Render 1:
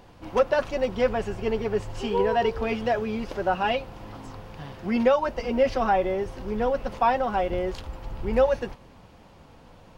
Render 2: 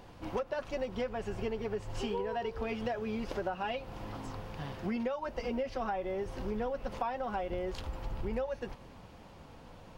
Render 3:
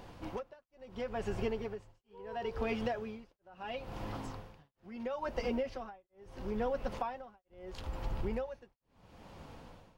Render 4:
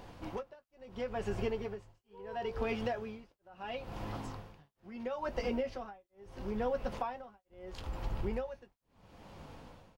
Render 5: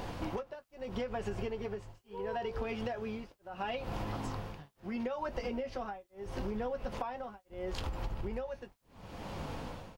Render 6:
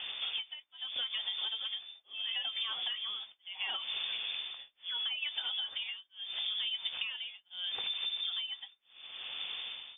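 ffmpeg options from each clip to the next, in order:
-af "acompressor=threshold=-30dB:ratio=12,volume=-1.5dB"
-af "tremolo=f=0.74:d=1,volume=1.5dB"
-filter_complex "[0:a]asplit=2[a][b];[b]adelay=20,volume=-13dB[c];[a][c]amix=inputs=2:normalize=0"
-af "acompressor=threshold=-44dB:ratio=12,volume=10.5dB"
-af "lowpass=f=3.1k:t=q:w=0.5098,lowpass=f=3.1k:t=q:w=0.6013,lowpass=f=3.1k:t=q:w=0.9,lowpass=f=3.1k:t=q:w=2.563,afreqshift=-3600"

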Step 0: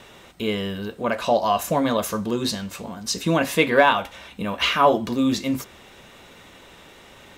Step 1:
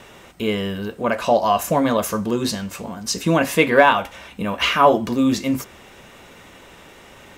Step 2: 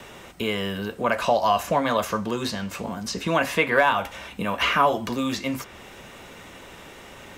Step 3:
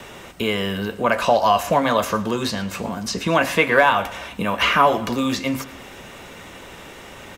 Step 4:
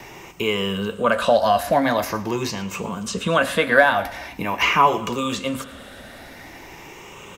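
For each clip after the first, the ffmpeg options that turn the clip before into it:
-af "equalizer=f=3.8k:t=o:w=0.46:g=-5,volume=3dB"
-filter_complex "[0:a]acrossover=split=120|620|2300|4900[a][b][c][d][e];[a]acompressor=threshold=-42dB:ratio=4[f];[b]acompressor=threshold=-30dB:ratio=4[g];[c]acompressor=threshold=-19dB:ratio=4[h];[d]acompressor=threshold=-34dB:ratio=4[i];[e]acompressor=threshold=-43dB:ratio=4[j];[f][g][h][i][j]amix=inputs=5:normalize=0,volume=1dB"
-af "aecho=1:1:113|226|339|452:0.119|0.0618|0.0321|0.0167,volume=4dB"
-af "afftfilt=real='re*pow(10,9/40*sin(2*PI*(0.74*log(max(b,1)*sr/1024/100)/log(2)-(0.45)*(pts-256)/sr)))':imag='im*pow(10,9/40*sin(2*PI*(0.74*log(max(b,1)*sr/1024/100)/log(2)-(0.45)*(pts-256)/sr)))':win_size=1024:overlap=0.75,volume=-2dB"

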